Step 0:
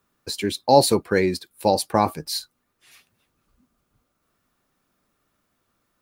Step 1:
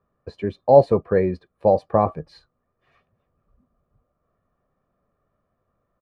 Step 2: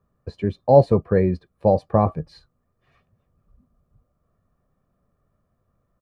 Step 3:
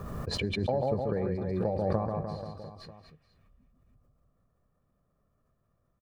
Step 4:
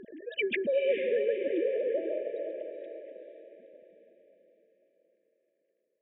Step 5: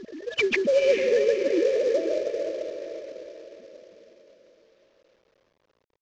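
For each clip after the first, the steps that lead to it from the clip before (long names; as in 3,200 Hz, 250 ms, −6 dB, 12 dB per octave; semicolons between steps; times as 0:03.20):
low-pass filter 1,000 Hz 12 dB per octave; comb filter 1.7 ms, depth 51%; level +1.5 dB
bass and treble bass +8 dB, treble +4 dB; level −1.5 dB
downward compressor 6 to 1, threshold −20 dBFS, peak gain reduction 13 dB; on a send: reverse bouncing-ball delay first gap 140 ms, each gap 1.15×, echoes 5; on the sum: background raised ahead of every attack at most 26 dB per second; level −7.5 dB
three sine waves on the formant tracks; feedback delay with all-pass diffusion 470 ms, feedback 45%, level −6 dB; brick-wall band-stop 660–1,600 Hz
variable-slope delta modulation 32 kbit/s; level +7 dB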